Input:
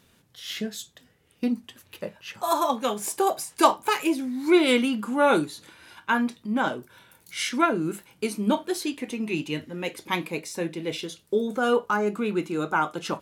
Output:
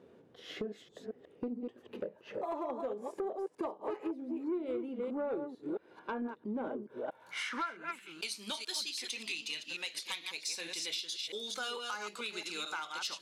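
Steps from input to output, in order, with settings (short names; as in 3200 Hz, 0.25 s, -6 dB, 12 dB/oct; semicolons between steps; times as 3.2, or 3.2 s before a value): reverse delay 0.222 s, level -7 dB; band-pass sweep 430 Hz -> 4400 Hz, 6.88–8.36; compressor 5:1, threshold -48 dBFS, peak gain reduction 26.5 dB; sine folder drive 6 dB, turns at -31 dBFS; dynamic EQ 9600 Hz, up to +5 dB, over -58 dBFS, Q 1; gain +2 dB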